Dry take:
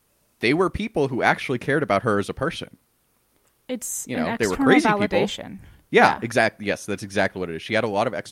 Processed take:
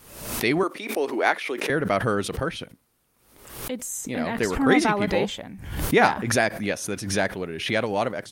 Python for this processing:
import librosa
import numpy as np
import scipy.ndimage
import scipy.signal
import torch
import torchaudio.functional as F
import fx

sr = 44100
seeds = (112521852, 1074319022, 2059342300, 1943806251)

y = fx.highpass(x, sr, hz=310.0, slope=24, at=(0.63, 1.7))
y = fx.pre_swell(y, sr, db_per_s=70.0)
y = F.gain(torch.from_numpy(y), -3.0).numpy()